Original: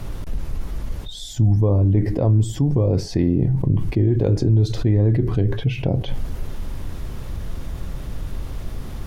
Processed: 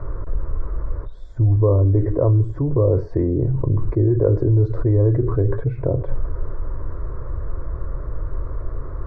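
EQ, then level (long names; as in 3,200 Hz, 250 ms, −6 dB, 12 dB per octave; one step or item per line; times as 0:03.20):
low-pass with resonance 1,000 Hz, resonance Q 1.8
phaser with its sweep stopped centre 790 Hz, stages 6
+3.5 dB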